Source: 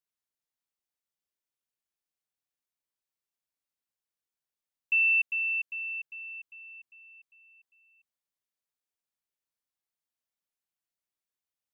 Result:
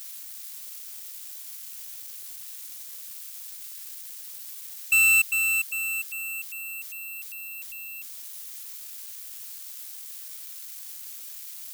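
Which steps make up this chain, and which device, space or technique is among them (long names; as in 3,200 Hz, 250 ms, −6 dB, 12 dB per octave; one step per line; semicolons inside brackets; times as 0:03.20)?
budget class-D amplifier (gap after every zero crossing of 0.067 ms; spike at every zero crossing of −32.5 dBFS)
level +6 dB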